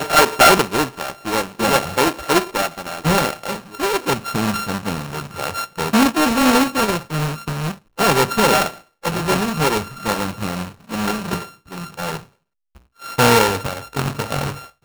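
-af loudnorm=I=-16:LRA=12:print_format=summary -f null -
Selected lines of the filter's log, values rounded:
Input Integrated:    -19.1 LUFS
Input True Peak:      -4.2 dBTP
Input LRA:             5.0 LU
Input Threshold:     -29.6 LUFS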